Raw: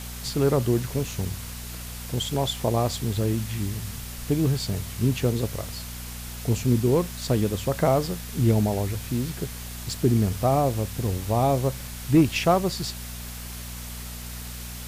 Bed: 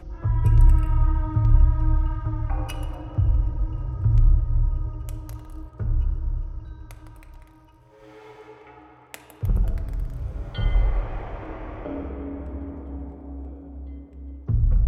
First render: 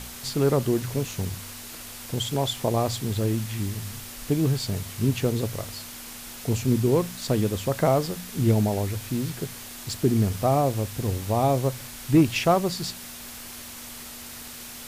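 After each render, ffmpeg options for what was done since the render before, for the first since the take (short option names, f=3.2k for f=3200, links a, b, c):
-af "bandreject=f=60:t=h:w=4,bandreject=f=120:t=h:w=4,bandreject=f=180:t=h:w=4"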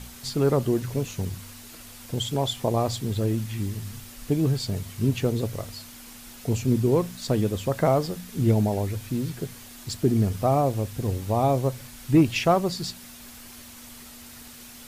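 -af "afftdn=nr=6:nf=-40"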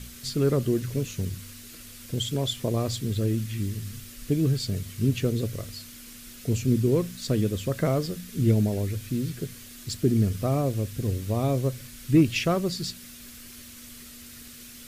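-af "equalizer=f=840:w=2:g=-14.5"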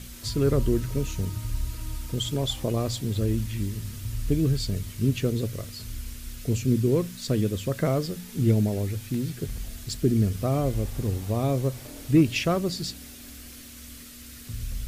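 -filter_complex "[1:a]volume=-13.5dB[a];[0:a][a]amix=inputs=2:normalize=0"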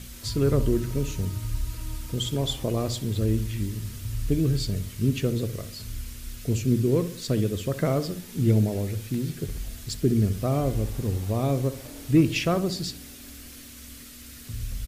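-filter_complex "[0:a]asplit=2[a][b];[b]adelay=64,lowpass=f=2k:p=1,volume=-12.5dB,asplit=2[c][d];[d]adelay=64,lowpass=f=2k:p=1,volume=0.48,asplit=2[e][f];[f]adelay=64,lowpass=f=2k:p=1,volume=0.48,asplit=2[g][h];[h]adelay=64,lowpass=f=2k:p=1,volume=0.48,asplit=2[i][j];[j]adelay=64,lowpass=f=2k:p=1,volume=0.48[k];[a][c][e][g][i][k]amix=inputs=6:normalize=0"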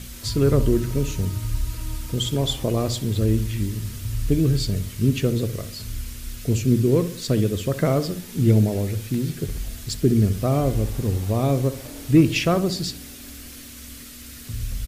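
-af "volume=4dB"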